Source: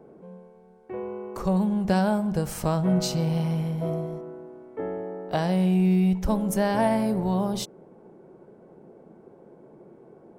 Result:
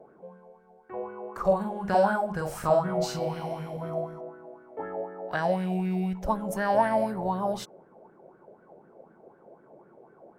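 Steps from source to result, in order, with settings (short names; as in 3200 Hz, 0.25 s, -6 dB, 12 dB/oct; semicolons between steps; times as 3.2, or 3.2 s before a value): 1.4–3.77 doubler 46 ms -3 dB; LFO bell 4 Hz 580–1600 Hz +18 dB; gain -8.5 dB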